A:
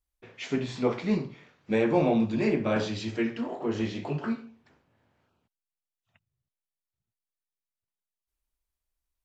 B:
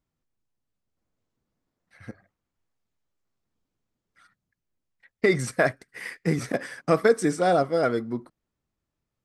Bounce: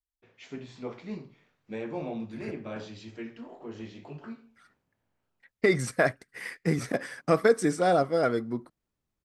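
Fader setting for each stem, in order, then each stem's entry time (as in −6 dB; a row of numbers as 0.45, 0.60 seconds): −11.5, −2.0 decibels; 0.00, 0.40 seconds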